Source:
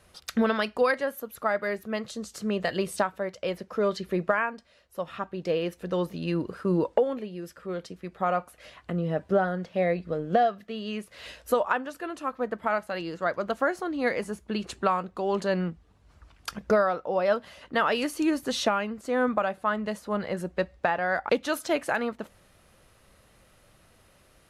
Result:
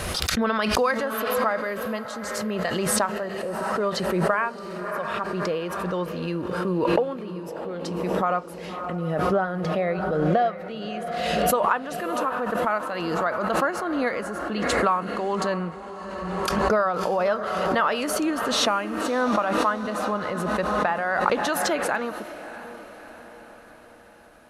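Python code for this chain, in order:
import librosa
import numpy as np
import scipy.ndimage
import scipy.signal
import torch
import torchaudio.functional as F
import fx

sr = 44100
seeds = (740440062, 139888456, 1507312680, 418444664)

y = fx.dynamic_eq(x, sr, hz=1100.0, q=1.6, threshold_db=-39.0, ratio=4.0, max_db=6)
y = fx.spec_erase(y, sr, start_s=3.14, length_s=0.47, low_hz=2000.0, high_hz=11000.0)
y = fx.echo_diffused(y, sr, ms=626, feedback_pct=55, wet_db=-12)
y = fx.pre_swell(y, sr, db_per_s=24.0)
y = y * 10.0 ** (-1.5 / 20.0)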